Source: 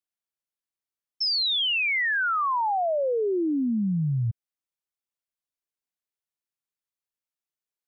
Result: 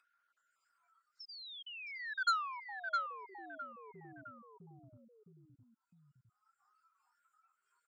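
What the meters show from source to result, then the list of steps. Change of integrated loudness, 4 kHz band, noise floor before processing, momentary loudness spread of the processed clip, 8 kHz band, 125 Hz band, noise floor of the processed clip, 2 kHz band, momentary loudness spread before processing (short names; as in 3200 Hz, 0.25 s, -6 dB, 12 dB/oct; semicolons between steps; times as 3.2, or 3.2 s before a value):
-15.5 dB, -21.0 dB, under -85 dBFS, 22 LU, n/a, -31.5 dB, -85 dBFS, -15.0 dB, 6 LU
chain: random spectral dropouts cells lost 25%; limiter -29.5 dBFS, peak gain reduction 8 dB; feedback echo 0.661 s, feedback 22%, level -5 dB; spectral noise reduction 22 dB; band-pass 1400 Hz, Q 17; upward compressor, threshold -52 dBFS; core saturation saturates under 2300 Hz; gain +9 dB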